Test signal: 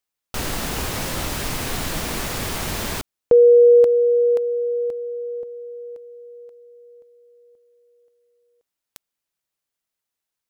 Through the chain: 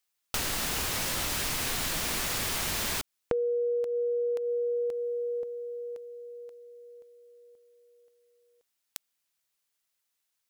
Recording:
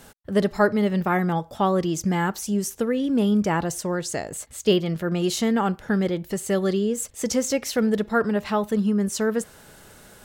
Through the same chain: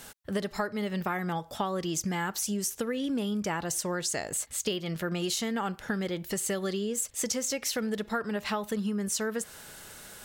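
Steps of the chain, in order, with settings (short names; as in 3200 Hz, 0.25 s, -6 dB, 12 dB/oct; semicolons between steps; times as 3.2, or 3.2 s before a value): tilt shelf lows -4.5 dB, about 1100 Hz; compressor 12:1, threshold -27 dBFS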